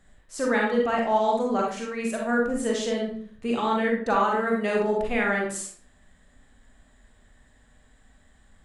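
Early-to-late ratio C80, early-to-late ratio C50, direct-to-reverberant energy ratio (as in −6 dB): 7.5 dB, 2.5 dB, −1.5 dB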